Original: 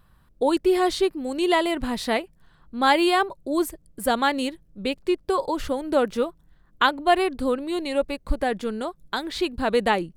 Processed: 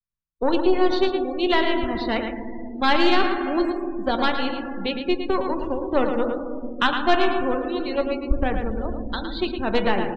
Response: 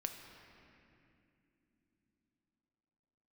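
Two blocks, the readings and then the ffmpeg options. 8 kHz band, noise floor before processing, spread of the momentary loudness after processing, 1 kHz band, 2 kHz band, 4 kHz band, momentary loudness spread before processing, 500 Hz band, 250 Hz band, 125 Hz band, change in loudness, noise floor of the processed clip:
under -15 dB, -58 dBFS, 9 LU, -0.5 dB, +1.0 dB, +1.0 dB, 9 LU, +0.5 dB, +2.0 dB, n/a, +0.5 dB, -34 dBFS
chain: -filter_complex "[0:a]aeval=exprs='0.596*(cos(1*acos(clip(val(0)/0.596,-1,1)))-cos(1*PI/2))+0.075*(cos(4*acos(clip(val(0)/0.596,-1,1)))-cos(4*PI/2))+0.0299*(cos(7*acos(clip(val(0)/0.596,-1,1)))-cos(7*PI/2))':c=same,agate=range=-33dB:threshold=-56dB:ratio=3:detection=peak[a];[1:a]atrim=start_sample=2205[b];[a][b]afir=irnorm=-1:irlink=0,acrossover=split=110|750|3800[c][d][e][f];[f]alimiter=level_in=3dB:limit=-24dB:level=0:latency=1:release=310,volume=-3dB[g];[c][d][e][g]amix=inputs=4:normalize=0,afftdn=nr=34:nf=-35,lowshelf=f=350:g=5.5,asplit=2[h][i];[i]adelay=110.8,volume=-7dB,highshelf=f=4k:g=-2.49[j];[h][j]amix=inputs=2:normalize=0,aresample=16000,aresample=44100,highshelf=f=3.6k:g=11,asoftclip=type=tanh:threshold=-4.5dB"

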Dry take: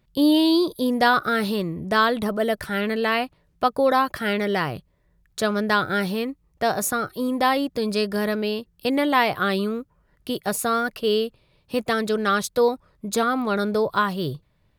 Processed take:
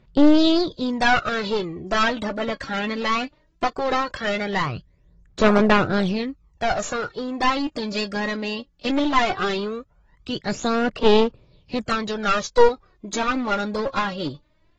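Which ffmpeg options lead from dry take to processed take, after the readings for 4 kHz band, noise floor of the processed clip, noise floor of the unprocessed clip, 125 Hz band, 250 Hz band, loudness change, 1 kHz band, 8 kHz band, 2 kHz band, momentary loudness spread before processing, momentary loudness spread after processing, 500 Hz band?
+1.0 dB, -61 dBFS, -65 dBFS, +1.0 dB, +1.0 dB, +0.5 dB, 0.0 dB, -3.5 dB, 0.0 dB, 9 LU, 12 LU, +0.5 dB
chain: -af "aphaser=in_gain=1:out_gain=1:delay=3.7:decay=0.69:speed=0.18:type=sinusoidal,aeval=exprs='clip(val(0),-1,0.0708)':c=same,volume=-1dB" -ar 32000 -c:a aac -b:a 24k

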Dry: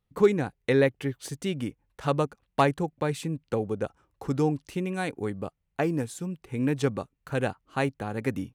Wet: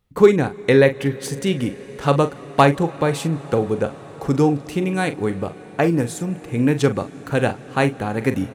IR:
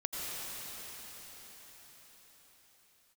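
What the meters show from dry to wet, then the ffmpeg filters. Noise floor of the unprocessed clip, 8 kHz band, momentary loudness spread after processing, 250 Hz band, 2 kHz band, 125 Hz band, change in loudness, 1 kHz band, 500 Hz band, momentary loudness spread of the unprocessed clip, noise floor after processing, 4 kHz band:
-78 dBFS, +9.0 dB, 10 LU, +9.0 dB, +9.0 dB, +9.0 dB, +9.0 dB, +9.0 dB, +9.0 dB, 11 LU, -39 dBFS, +9.0 dB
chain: -filter_complex "[0:a]asplit=2[a][b];[b]adelay=42,volume=-11.5dB[c];[a][c]amix=inputs=2:normalize=0,asplit=2[d][e];[1:a]atrim=start_sample=2205,asetrate=25137,aresample=44100[f];[e][f]afir=irnorm=-1:irlink=0,volume=-25dB[g];[d][g]amix=inputs=2:normalize=0,volume=8dB"

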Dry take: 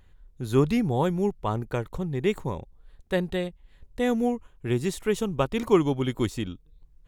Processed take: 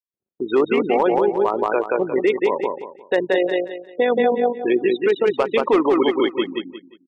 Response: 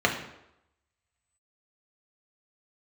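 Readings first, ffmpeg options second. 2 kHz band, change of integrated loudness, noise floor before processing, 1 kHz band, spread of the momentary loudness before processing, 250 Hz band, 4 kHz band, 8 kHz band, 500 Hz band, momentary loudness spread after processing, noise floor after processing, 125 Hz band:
+10.0 dB, +7.0 dB, -57 dBFS, +10.0 dB, 12 LU, +4.0 dB, +7.0 dB, under -10 dB, +10.0 dB, 8 LU, under -85 dBFS, under -10 dB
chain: -filter_complex "[0:a]lowpass=5k,afftfilt=real='re*gte(hypot(re,im),0.0355)':imag='im*gte(hypot(re,im),0.0355)':win_size=1024:overlap=0.75,agate=range=-33dB:threshold=-45dB:ratio=3:detection=peak,highpass=f=340:w=0.5412,highpass=f=340:w=1.3066,asplit=2[a][b];[b]acompressor=threshold=-40dB:ratio=5,volume=-0.5dB[c];[a][c]amix=inputs=2:normalize=0,asoftclip=type=hard:threshold=-16dB,tremolo=f=50:d=0.462,aecho=1:1:177|354|531|708:0.562|0.157|0.0441|0.0123,alimiter=level_in=22.5dB:limit=-1dB:release=50:level=0:latency=1,volume=-7.5dB" -ar 22050 -c:a libmp3lame -b:a 144k

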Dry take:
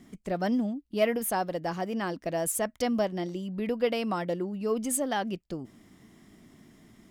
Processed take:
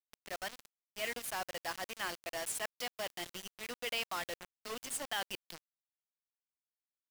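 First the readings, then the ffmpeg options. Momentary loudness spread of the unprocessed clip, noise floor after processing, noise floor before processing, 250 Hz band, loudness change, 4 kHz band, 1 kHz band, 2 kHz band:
7 LU, under -85 dBFS, -64 dBFS, -24.0 dB, -9.5 dB, +1.0 dB, -9.5 dB, -2.0 dB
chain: -af "areverse,acompressor=threshold=-40dB:ratio=5,areverse,bandpass=f=3.1k:t=q:w=0.98:csg=0,acrusher=bits=8:mix=0:aa=0.000001,volume=13dB"

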